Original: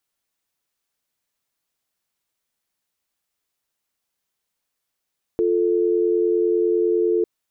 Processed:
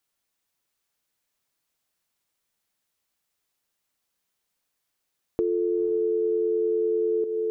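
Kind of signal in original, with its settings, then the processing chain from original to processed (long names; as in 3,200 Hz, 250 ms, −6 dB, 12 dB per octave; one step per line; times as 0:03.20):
call progress tone dial tone, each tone −19 dBFS 1.85 s
on a send: feedback delay with all-pass diffusion 501 ms, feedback 52%, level −9 dB
on the sum: downward compressor 5 to 1, threshold −22 dBFS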